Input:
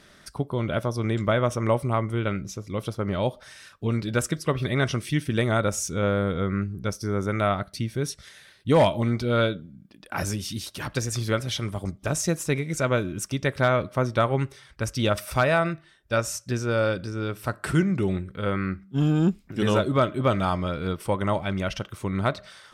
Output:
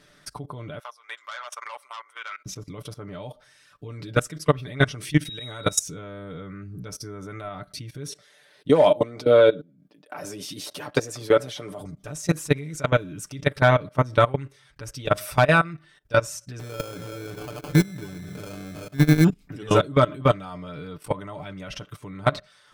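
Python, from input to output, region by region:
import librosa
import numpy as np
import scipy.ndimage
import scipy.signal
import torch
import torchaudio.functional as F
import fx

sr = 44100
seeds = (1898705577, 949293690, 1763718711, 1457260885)

y = fx.chain(x, sr, fx.highpass(hz=1000.0, slope=24),
    fx.high_shelf(hz=2200.0, db=-5.5),
    fx.transformer_sat(knee_hz=2700.0), at=(0.79, 2.46))
y = fx.high_shelf(y, sr, hz=2500.0, db=8.5, at=(5.25, 5.79), fade=0.02)
y = fx.auto_swell(y, sr, attack_ms=243.0, at=(5.25, 5.79), fade=0.02)
y = fx.dmg_tone(y, sr, hz=3800.0, level_db=-34.0, at=(5.25, 5.79), fade=0.02)
y = fx.chain(y, sr, fx.highpass(hz=180.0, slope=12),
    fx.peak_eq(hz=560.0, db=9.5, octaves=1.5), at=(8.08, 11.81))
y = fx.chain(y, sr, fx.reverse_delay_fb(ms=188, feedback_pct=50, wet_db=-12.0),
    fx.sample_hold(seeds[0], rate_hz=1900.0, jitter_pct=0), at=(16.59, 19.24))
y = fx.level_steps(y, sr, step_db=21)
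y = y + 0.67 * np.pad(y, (int(6.8 * sr / 1000.0), 0))[:len(y)]
y = y * librosa.db_to_amplitude(4.5)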